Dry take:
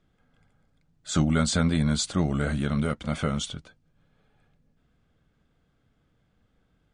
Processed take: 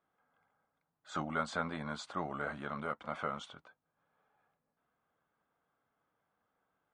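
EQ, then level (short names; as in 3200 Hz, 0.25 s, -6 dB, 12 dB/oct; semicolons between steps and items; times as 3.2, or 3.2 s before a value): band-pass 1000 Hz, Q 1.8; 0.0 dB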